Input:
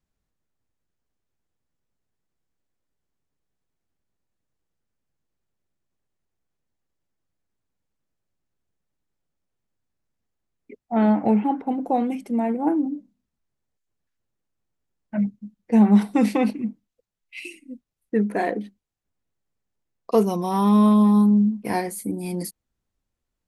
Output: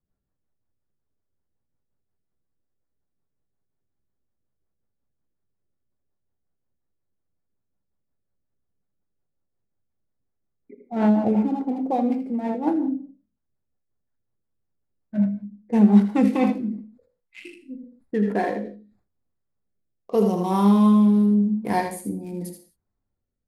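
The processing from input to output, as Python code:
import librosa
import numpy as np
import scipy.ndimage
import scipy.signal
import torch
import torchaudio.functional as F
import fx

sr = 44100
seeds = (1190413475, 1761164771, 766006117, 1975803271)

y = fx.wiener(x, sr, points=15)
y = y + 10.0 ** (-7.0 / 20.0) * np.pad(y, (int(80 * sr / 1000.0), 0))[:len(y)]
y = fx.rev_gated(y, sr, seeds[0], gate_ms=200, shape='falling', drr_db=7.0)
y = fx.rotary_switch(y, sr, hz=5.5, then_hz=0.85, switch_at_s=15.9)
y = fx.sustainer(y, sr, db_per_s=110.0, at=(16.65, 20.13))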